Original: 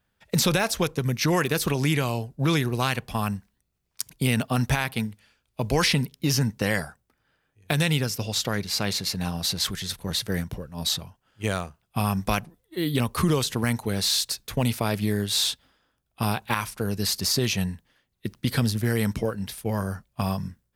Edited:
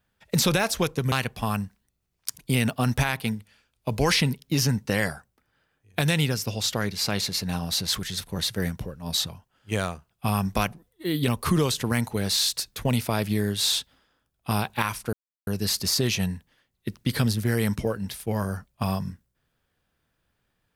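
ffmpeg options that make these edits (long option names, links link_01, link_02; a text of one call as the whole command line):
ffmpeg -i in.wav -filter_complex "[0:a]asplit=3[link_01][link_02][link_03];[link_01]atrim=end=1.122[link_04];[link_02]atrim=start=2.838:end=16.85,asetpts=PTS-STARTPTS,afade=type=out:start_time=14.008:duration=0.004:curve=hsin,apad=pad_dur=0.34[link_05];[link_03]atrim=start=16.85,asetpts=PTS-STARTPTS,afade=type=in:duration=0.004:curve=hsin[link_06];[link_05][link_06]concat=n=2:v=0:a=1[link_07];[link_04][link_07]acrossfade=duration=0.004:curve1=hsin:curve2=hsin" out.wav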